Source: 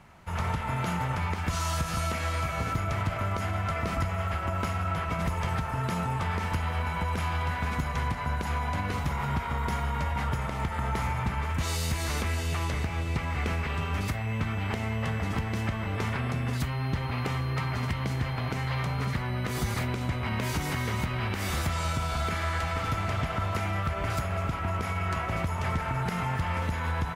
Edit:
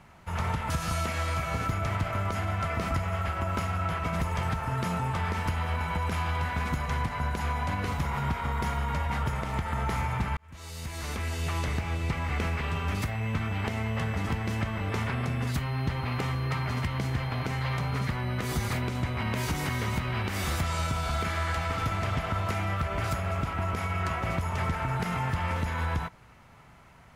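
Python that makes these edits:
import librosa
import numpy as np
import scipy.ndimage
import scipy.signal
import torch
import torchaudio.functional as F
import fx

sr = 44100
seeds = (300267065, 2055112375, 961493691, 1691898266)

y = fx.edit(x, sr, fx.cut(start_s=0.7, length_s=1.06),
    fx.fade_in_span(start_s=11.43, length_s=1.22), tone=tone)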